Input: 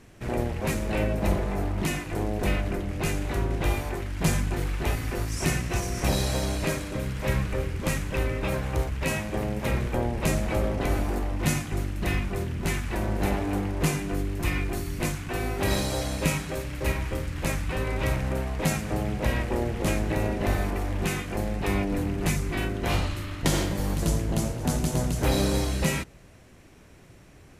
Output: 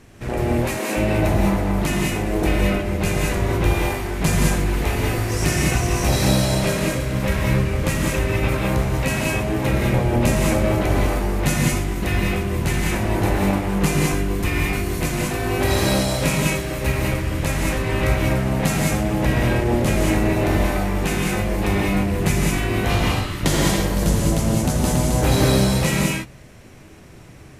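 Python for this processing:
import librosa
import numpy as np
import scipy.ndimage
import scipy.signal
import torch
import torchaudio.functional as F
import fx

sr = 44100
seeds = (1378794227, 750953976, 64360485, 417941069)

y = fx.highpass(x, sr, hz=fx.line((0.56, 390.0), (0.96, 180.0)), slope=24, at=(0.56, 0.96), fade=0.02)
y = fx.rev_gated(y, sr, seeds[0], gate_ms=230, shape='rising', drr_db=-1.5)
y = y * librosa.db_to_amplitude(4.0)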